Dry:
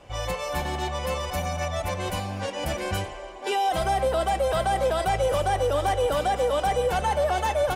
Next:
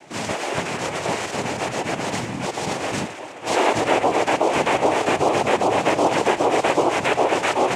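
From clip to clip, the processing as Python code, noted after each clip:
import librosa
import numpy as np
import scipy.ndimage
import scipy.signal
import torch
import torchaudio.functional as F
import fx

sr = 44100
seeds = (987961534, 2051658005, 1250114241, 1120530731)

y = fx.noise_vocoder(x, sr, seeds[0], bands=4)
y = y * librosa.db_to_amplitude(5.0)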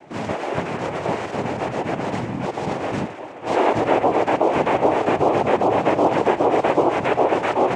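y = fx.lowpass(x, sr, hz=1100.0, slope=6)
y = y * librosa.db_to_amplitude(2.5)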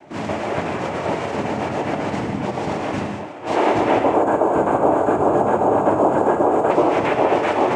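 y = fx.spec_box(x, sr, start_s=4.03, length_s=2.68, low_hz=1700.0, high_hz=6400.0, gain_db=-13)
y = fx.notch(y, sr, hz=510.0, q=17.0)
y = fx.rev_gated(y, sr, seeds[1], gate_ms=230, shape='flat', drr_db=3.5)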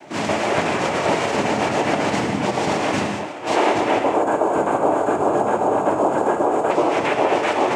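y = fx.low_shelf(x, sr, hz=82.0, db=-11.5)
y = fx.rider(y, sr, range_db=3, speed_s=0.5)
y = fx.high_shelf(y, sr, hz=2600.0, db=8.5)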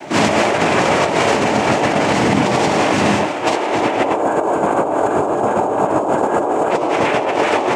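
y = fx.over_compress(x, sr, threshold_db=-23.0, ratio=-1.0)
y = y * librosa.db_to_amplitude(7.0)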